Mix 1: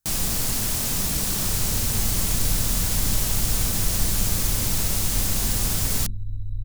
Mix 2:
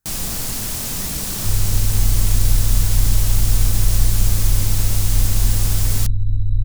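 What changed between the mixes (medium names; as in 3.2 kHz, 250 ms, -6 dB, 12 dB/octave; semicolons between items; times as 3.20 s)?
speech +5.5 dB; second sound +9.5 dB; reverb: on, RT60 2.4 s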